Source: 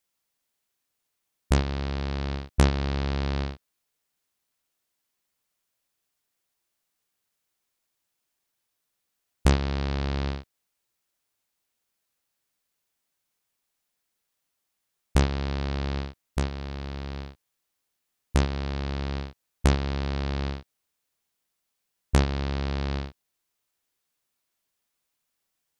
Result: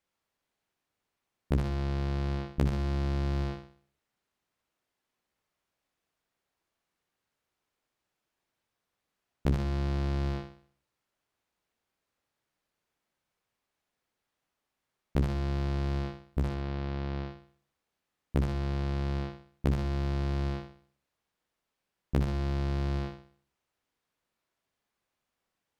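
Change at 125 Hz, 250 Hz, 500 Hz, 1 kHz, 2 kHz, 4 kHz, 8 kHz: −2.5 dB, −3.0 dB, −4.0 dB, −6.0 dB, −8.0 dB, −10.0 dB, below −10 dB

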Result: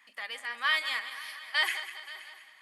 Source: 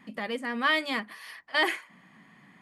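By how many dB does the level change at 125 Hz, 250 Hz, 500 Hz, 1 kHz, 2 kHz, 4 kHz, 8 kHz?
can't be measured, below −25 dB, −15.0 dB, −5.5 dB, −1.0 dB, +1.0 dB, +2.5 dB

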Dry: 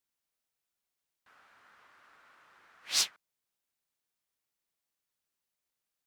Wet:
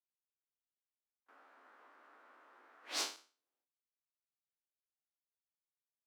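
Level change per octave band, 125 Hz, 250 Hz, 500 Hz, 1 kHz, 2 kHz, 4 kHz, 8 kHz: can't be measured, +3.5 dB, +3.5 dB, 0.0 dB, −5.5 dB, −9.5 dB, −10.5 dB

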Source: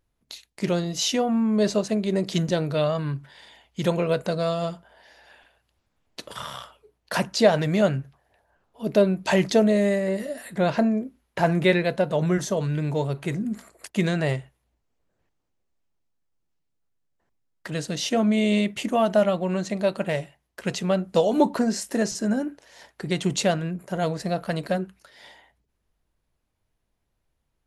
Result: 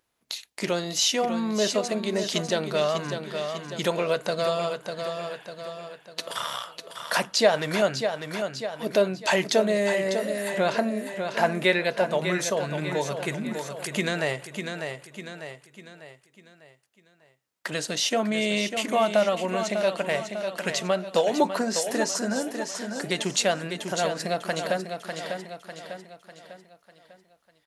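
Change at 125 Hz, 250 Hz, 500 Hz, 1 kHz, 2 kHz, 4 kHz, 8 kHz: −8.0, −6.0, −1.0, +1.0, +3.0, +3.5, +4.0 decibels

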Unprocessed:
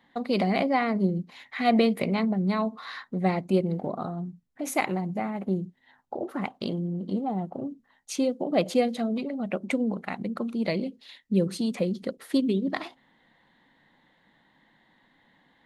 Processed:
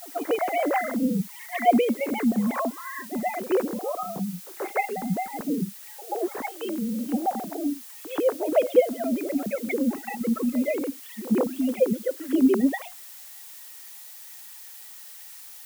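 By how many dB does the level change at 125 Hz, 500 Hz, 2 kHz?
−6.5, +3.5, +0.5 decibels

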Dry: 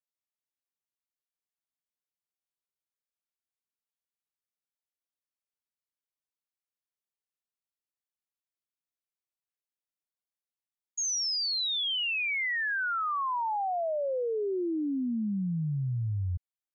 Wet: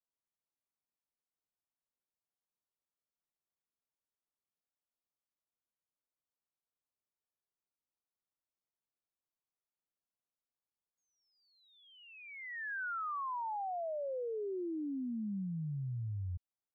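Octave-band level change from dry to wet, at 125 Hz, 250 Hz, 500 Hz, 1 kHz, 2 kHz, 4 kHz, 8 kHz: −8.0 dB, −8.0 dB, −8.0 dB, −8.0 dB, −12.5 dB, −34.0 dB, can't be measured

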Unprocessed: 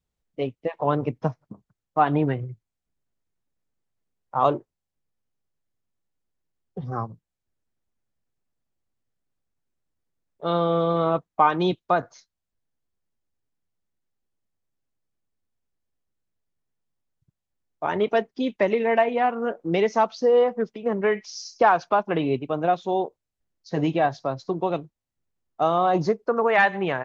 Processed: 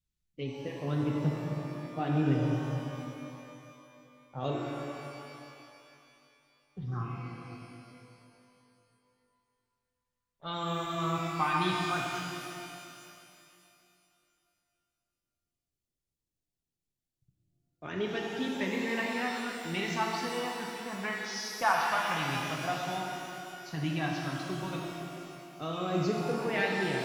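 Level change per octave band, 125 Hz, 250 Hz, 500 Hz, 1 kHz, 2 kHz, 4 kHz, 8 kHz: −2.5 dB, −5.5 dB, −13.0 dB, −10.0 dB, −4.5 dB, +0.5 dB, can't be measured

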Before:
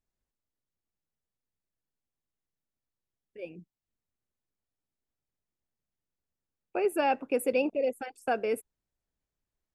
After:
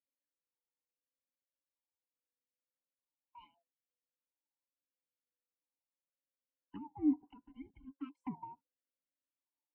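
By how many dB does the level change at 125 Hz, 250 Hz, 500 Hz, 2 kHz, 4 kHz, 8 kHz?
−1.5 dB, −2.0 dB, below −25 dB, below −30 dB, below −20 dB, below −30 dB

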